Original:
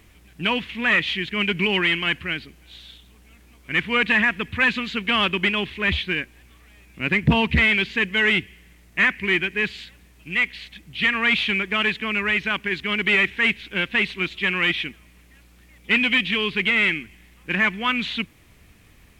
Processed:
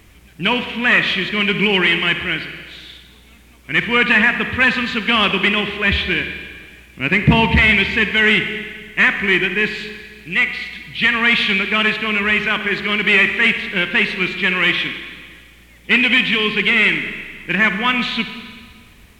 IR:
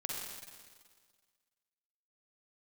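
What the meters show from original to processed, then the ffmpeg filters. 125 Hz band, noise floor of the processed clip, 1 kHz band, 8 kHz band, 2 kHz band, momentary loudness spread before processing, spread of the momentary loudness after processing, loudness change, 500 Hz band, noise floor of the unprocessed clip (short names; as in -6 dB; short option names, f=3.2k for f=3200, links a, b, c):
+5.5 dB, -46 dBFS, +6.0 dB, n/a, +5.5 dB, 9 LU, 13 LU, +5.5 dB, +5.5 dB, -53 dBFS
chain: -filter_complex "[0:a]asplit=2[a][b];[1:a]atrim=start_sample=2205[c];[b][c]afir=irnorm=-1:irlink=0,volume=-3.5dB[d];[a][d]amix=inputs=2:normalize=0,volume=1.5dB"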